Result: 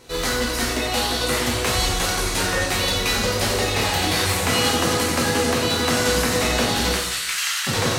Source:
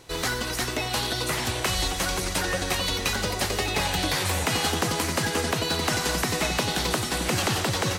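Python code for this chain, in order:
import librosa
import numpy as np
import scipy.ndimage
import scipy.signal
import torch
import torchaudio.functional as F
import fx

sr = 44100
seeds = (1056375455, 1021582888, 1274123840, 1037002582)

y = fx.highpass(x, sr, hz=1400.0, slope=24, at=(6.94, 7.67))
y = fx.rev_plate(y, sr, seeds[0], rt60_s=0.86, hf_ratio=0.9, predelay_ms=0, drr_db=-3.5)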